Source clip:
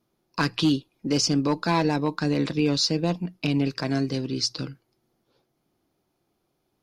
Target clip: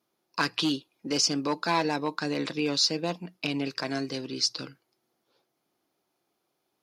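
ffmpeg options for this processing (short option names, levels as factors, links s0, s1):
-af "highpass=f=540:p=1"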